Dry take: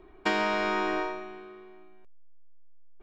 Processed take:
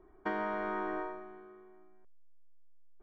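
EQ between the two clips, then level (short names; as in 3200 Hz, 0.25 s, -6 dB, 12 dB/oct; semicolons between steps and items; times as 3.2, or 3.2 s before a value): polynomial smoothing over 41 samples; -7.0 dB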